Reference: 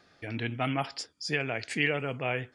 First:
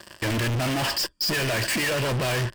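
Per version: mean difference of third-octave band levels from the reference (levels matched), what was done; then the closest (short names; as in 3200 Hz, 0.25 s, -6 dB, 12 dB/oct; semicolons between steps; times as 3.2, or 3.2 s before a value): 13.0 dB: in parallel at -4.5 dB: fuzz box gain 51 dB, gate -56 dBFS; on the sum: ripple EQ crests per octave 1.3, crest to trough 9 dB; soft clip -23.5 dBFS, distortion -9 dB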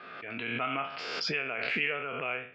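7.5 dB: spectral trails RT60 0.44 s; speaker cabinet 300–2800 Hz, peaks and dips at 310 Hz -10 dB, 540 Hz -5 dB, 820 Hz -8 dB, 1300 Hz +6 dB, 1800 Hz -7 dB, 2600 Hz +4 dB; backwards sustainer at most 29 dB/s; gain -2.5 dB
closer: second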